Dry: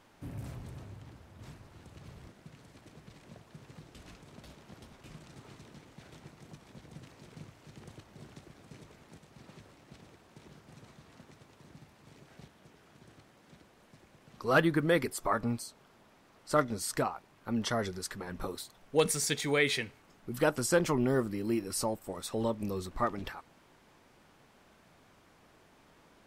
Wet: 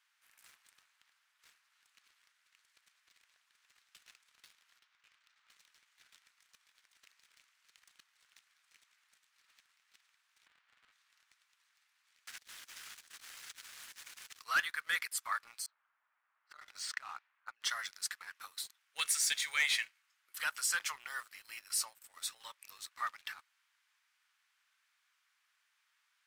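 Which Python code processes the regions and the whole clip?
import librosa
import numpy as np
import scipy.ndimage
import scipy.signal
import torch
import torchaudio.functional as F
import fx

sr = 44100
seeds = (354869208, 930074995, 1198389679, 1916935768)

y = fx.chain(x, sr, fx.ellip_highpass(hz=570.0, order=4, stop_db=40),
    fx.air_absorb(metres=110.0), at=(4.79, 5.5))
y = fx.chain(y, sr, fx.halfwave_hold(),
    fx.lowpass(hz=2900.0, slope=12), at=(10.46, 10.92))
y = fx.chain(y, sr, fx.bass_treble(bass_db=11, treble_db=7),
    fx.leveller(passes=3),
    fx.over_compress(threshold_db=-43.0, ratio=-1.0), at=(12.27, 14.42))
y = fx.chain(y, sr, fx.env_lowpass(base_hz=1200.0, full_db=-25.5),
    fx.high_shelf(hz=2700.0, db=-6.0),
    fx.over_compress(threshold_db=-37.0, ratio=-1.0), at=(15.66, 17.64))
y = scipy.signal.sosfilt(scipy.signal.butter(4, 1400.0, 'highpass', fs=sr, output='sos'), y)
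y = fx.leveller(y, sr, passes=2)
y = y * librosa.db_to_amplitude(-5.5)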